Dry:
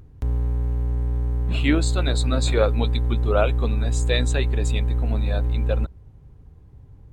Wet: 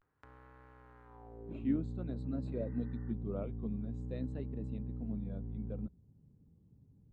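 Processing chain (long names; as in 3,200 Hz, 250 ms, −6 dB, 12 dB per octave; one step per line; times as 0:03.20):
healed spectral selection 0:02.60–0:03.12, 720–2,000 Hz before
band-pass filter sweep 1,400 Hz → 200 Hz, 0:01.06–0:01.72
pitch vibrato 0.5 Hz 90 cents
level −5.5 dB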